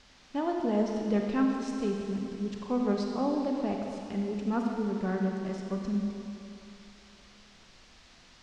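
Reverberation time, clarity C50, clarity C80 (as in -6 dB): 2.8 s, 1.5 dB, 2.5 dB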